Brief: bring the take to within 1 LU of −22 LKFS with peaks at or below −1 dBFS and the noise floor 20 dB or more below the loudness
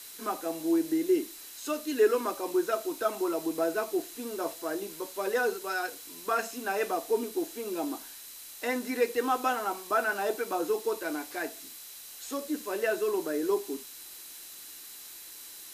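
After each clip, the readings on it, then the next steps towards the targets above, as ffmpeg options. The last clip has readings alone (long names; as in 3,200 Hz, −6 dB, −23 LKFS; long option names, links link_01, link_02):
interfering tone 4,000 Hz; level of the tone −56 dBFS; background noise floor −46 dBFS; target noise floor −51 dBFS; integrated loudness −31.0 LKFS; sample peak −13.0 dBFS; target loudness −22.0 LKFS
→ -af "bandreject=frequency=4000:width=30"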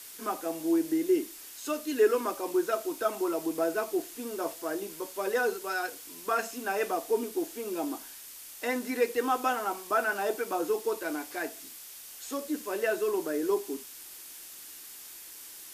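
interfering tone none found; background noise floor −47 dBFS; target noise floor −51 dBFS
→ -af "afftdn=noise_reduction=6:noise_floor=-47"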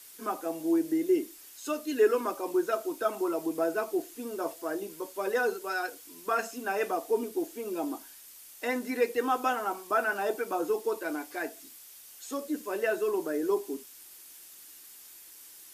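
background noise floor −51 dBFS; integrated loudness −31.0 LKFS; sample peak −13.5 dBFS; target loudness −22.0 LKFS
→ -af "volume=9dB"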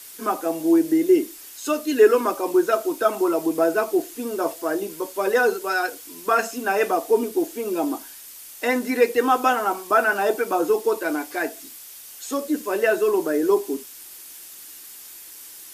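integrated loudness −22.0 LKFS; sample peak −4.5 dBFS; background noise floor −42 dBFS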